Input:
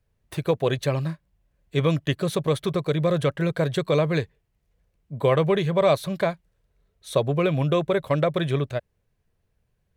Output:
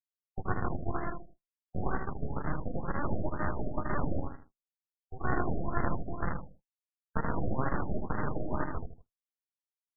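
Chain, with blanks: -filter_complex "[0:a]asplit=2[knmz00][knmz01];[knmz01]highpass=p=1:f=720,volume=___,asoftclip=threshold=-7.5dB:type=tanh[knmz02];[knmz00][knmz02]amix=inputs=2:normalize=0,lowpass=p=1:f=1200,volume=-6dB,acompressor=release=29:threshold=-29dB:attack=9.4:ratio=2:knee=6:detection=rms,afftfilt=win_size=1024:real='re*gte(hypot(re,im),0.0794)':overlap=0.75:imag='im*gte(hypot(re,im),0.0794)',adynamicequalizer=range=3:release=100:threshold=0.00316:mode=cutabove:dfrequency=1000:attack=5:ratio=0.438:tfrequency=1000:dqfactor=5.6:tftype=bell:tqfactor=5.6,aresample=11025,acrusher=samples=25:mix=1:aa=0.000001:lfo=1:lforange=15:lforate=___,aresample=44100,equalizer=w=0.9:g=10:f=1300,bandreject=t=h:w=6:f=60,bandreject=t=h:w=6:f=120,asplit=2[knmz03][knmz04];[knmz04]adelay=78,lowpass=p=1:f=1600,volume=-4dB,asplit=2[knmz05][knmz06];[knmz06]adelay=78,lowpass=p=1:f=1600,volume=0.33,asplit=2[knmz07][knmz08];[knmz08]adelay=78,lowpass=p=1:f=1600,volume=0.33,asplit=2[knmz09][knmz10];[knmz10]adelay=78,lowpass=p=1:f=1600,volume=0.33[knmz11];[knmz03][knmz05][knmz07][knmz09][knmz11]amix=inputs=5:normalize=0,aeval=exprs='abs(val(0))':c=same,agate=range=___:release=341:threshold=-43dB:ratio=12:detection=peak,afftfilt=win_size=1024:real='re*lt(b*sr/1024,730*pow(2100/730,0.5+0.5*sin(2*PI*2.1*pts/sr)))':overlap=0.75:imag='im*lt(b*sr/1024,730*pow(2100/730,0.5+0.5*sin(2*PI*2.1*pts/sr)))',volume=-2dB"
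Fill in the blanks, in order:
11dB, 0.21, -28dB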